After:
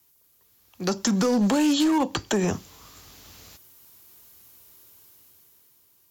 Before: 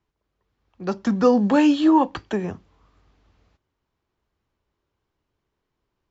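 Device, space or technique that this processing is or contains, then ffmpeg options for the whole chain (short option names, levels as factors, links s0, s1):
FM broadcast chain: -filter_complex "[0:a]highpass=76,dynaudnorm=f=210:g=11:m=3.16,acrossover=split=570|1300[s0][s1][s2];[s0]acompressor=threshold=0.112:ratio=4[s3];[s1]acompressor=threshold=0.0282:ratio=4[s4];[s2]acompressor=threshold=0.00794:ratio=4[s5];[s3][s4][s5]amix=inputs=3:normalize=0,aemphasis=mode=production:type=75fm,alimiter=limit=0.133:level=0:latency=1:release=97,asoftclip=type=hard:threshold=0.0944,lowpass=f=15000:w=0.5412,lowpass=f=15000:w=1.3066,aemphasis=mode=production:type=75fm,volume=1.58"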